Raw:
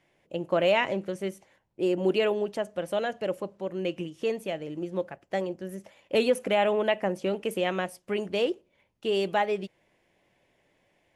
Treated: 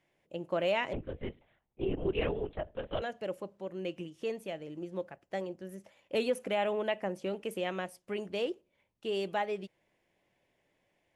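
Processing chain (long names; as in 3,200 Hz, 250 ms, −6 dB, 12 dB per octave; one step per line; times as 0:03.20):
0:00.93–0:03.02: linear-prediction vocoder at 8 kHz whisper
level −7 dB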